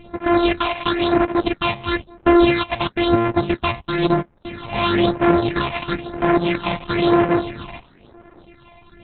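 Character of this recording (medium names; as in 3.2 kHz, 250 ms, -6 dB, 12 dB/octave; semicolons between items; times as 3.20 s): a buzz of ramps at a fixed pitch in blocks of 128 samples; phasing stages 6, 1 Hz, lowest notch 380–4000 Hz; Opus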